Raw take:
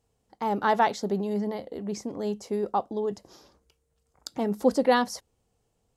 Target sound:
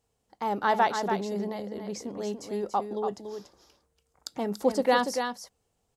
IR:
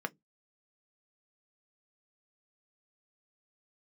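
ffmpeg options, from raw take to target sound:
-filter_complex "[0:a]lowshelf=frequency=460:gain=-5,asplit=2[link_01][link_02];[link_02]aecho=0:1:286:0.447[link_03];[link_01][link_03]amix=inputs=2:normalize=0"

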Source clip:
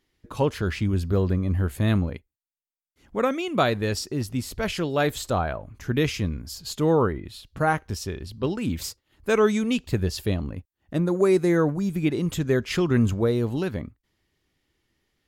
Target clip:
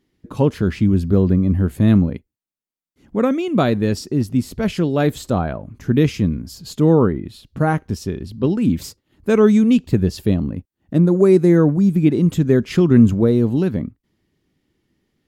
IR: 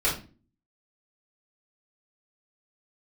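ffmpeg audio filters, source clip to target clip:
-af "equalizer=frequency=210:width=0.59:gain=12.5,volume=-1dB"

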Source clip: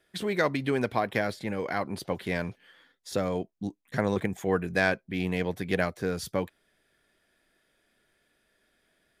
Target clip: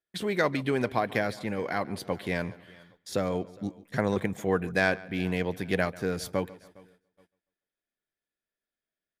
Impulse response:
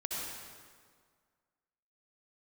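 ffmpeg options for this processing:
-filter_complex "[0:a]asplit=2[link_01][link_02];[link_02]aecho=0:1:409|818:0.0631|0.0233[link_03];[link_01][link_03]amix=inputs=2:normalize=0,agate=range=-24dB:threshold=-59dB:ratio=16:detection=peak,asplit=2[link_04][link_05];[link_05]adelay=142,lowpass=frequency=4300:poles=1,volume=-20dB,asplit=2[link_06][link_07];[link_07]adelay=142,lowpass=frequency=4300:poles=1,volume=0.39,asplit=2[link_08][link_09];[link_09]adelay=142,lowpass=frequency=4300:poles=1,volume=0.39[link_10];[link_06][link_08][link_10]amix=inputs=3:normalize=0[link_11];[link_04][link_11]amix=inputs=2:normalize=0"

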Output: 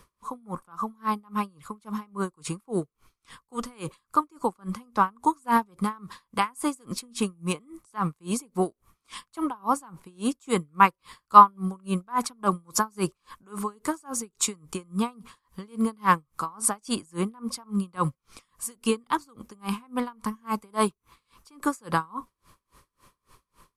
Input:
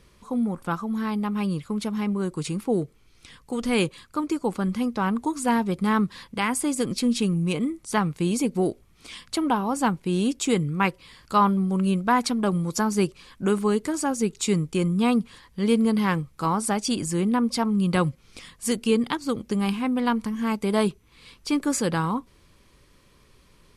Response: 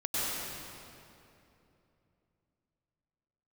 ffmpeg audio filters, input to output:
-filter_complex "[0:a]equalizer=frequency=1100:width_type=o:width=0.76:gain=13.5,acrossover=split=360|4600[link_01][link_02][link_03];[link_03]crystalizer=i=1.5:c=0[link_04];[link_01][link_02][link_04]amix=inputs=3:normalize=0,aeval=exprs='val(0)*pow(10,-33*(0.5-0.5*cos(2*PI*3.6*n/s))/20)':channel_layout=same,volume=-1dB"

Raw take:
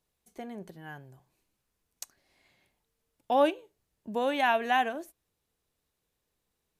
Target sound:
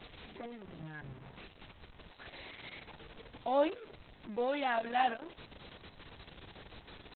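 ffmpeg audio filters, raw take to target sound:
ffmpeg -i in.wav -af "aeval=exprs='val(0)+0.5*0.0158*sgn(val(0))':channel_layout=same,atempo=0.95,volume=-6dB" -ar 48000 -c:a libopus -b:a 6k out.opus

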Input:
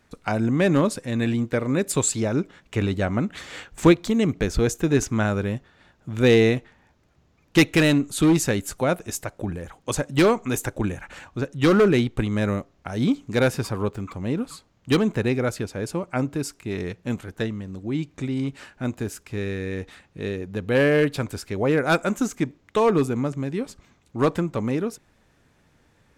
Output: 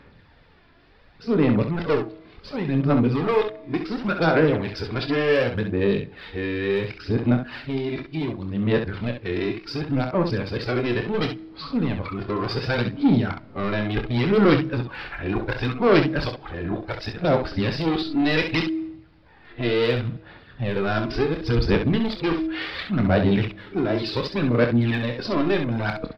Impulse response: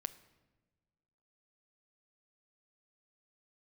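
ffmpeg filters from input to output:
-filter_complex "[0:a]areverse,bandreject=frequency=320.2:width_type=h:width=4,bandreject=frequency=640.4:width_type=h:width=4,acompressor=threshold=-21dB:ratio=3,aresample=11025,asoftclip=type=tanh:threshold=-22.5dB,aresample=44100,aphaser=in_gain=1:out_gain=1:delay=3:decay=0.5:speed=0.69:type=sinusoidal,aecho=1:1:25|66:0.376|0.422,asplit=2[link_01][link_02];[1:a]atrim=start_sample=2205,lowshelf=frequency=410:gain=-7.5[link_03];[link_02][link_03]afir=irnorm=-1:irlink=0,volume=0.5dB[link_04];[link_01][link_04]amix=inputs=2:normalize=0"

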